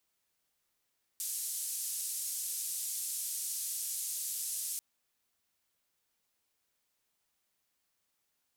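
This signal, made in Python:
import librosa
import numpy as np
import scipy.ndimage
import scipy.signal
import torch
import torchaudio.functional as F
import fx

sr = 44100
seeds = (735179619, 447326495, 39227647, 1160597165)

y = fx.band_noise(sr, seeds[0], length_s=3.59, low_hz=7600.0, high_hz=11000.0, level_db=-37.5)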